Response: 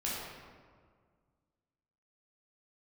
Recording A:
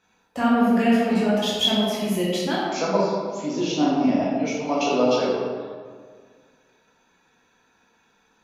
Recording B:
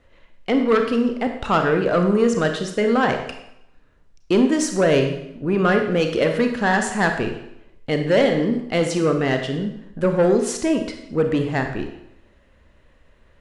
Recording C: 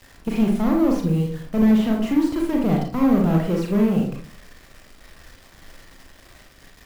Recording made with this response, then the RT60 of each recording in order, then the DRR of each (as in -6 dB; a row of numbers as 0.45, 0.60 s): A; 1.8, 0.80, 0.45 s; -7.0, 4.5, 0.0 dB